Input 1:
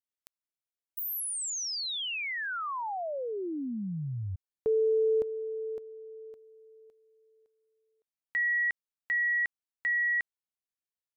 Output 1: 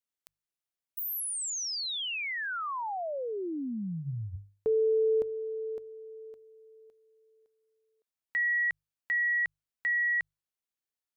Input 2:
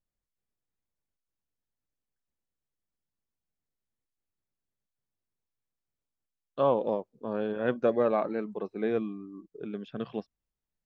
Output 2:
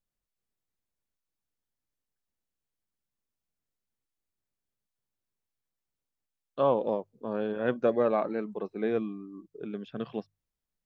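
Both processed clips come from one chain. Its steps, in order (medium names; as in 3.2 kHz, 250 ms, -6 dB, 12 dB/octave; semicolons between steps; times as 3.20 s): hum notches 50/100/150 Hz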